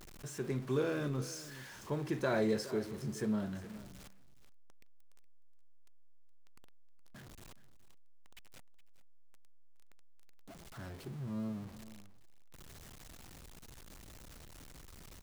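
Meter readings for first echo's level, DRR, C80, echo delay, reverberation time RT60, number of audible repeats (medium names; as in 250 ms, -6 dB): -16.0 dB, no reverb, no reverb, 418 ms, no reverb, 1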